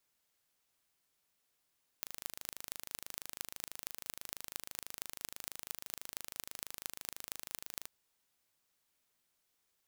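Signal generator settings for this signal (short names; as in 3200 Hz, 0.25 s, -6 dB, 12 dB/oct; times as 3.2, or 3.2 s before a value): pulse train 26.1/s, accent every 6, -10.5 dBFS 5.83 s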